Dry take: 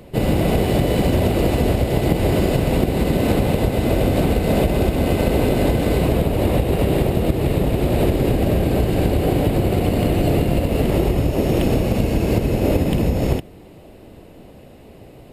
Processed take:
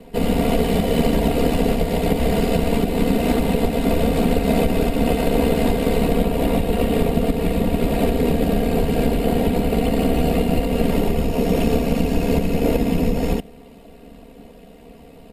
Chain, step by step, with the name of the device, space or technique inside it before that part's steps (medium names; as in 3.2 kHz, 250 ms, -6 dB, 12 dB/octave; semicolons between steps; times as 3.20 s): ring-modulated robot voice (ring modulator 36 Hz; comb 4.3 ms, depth 93%)